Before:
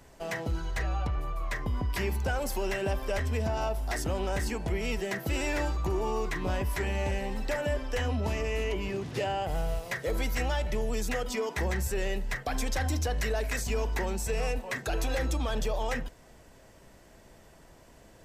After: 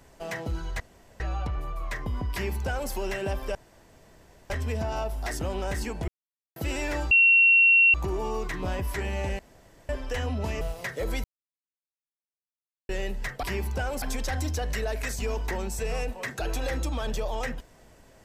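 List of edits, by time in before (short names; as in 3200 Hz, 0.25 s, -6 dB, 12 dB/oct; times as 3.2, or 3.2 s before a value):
0.8 insert room tone 0.40 s
1.92–2.51 copy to 12.5
3.15 insert room tone 0.95 s
4.73–5.21 mute
5.76 add tone 2730 Hz -14.5 dBFS 0.83 s
7.21–7.71 room tone
8.43–9.68 cut
10.31–11.96 mute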